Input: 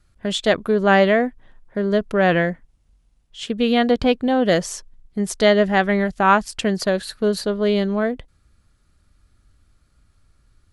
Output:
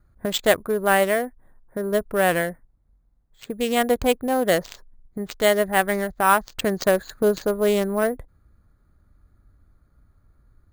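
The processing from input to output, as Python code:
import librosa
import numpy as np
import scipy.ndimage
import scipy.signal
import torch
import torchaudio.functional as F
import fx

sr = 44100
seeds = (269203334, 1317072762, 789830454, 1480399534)

y = fx.wiener(x, sr, points=15)
y = fx.dynamic_eq(y, sr, hz=210.0, q=0.95, threshold_db=-32.0, ratio=4.0, max_db=-7)
y = fx.rider(y, sr, range_db=3, speed_s=0.5)
y = fx.cheby_harmonics(y, sr, harmonics=(3, 7), levels_db=(-20, -35), full_scale_db=-5.0)
y = np.repeat(y[::4], 4)[:len(y)]
y = 10.0 ** (-9.0 / 20.0) * np.tanh(y / 10.0 ** (-9.0 / 20.0))
y = F.gain(torch.from_numpy(y), 4.0).numpy()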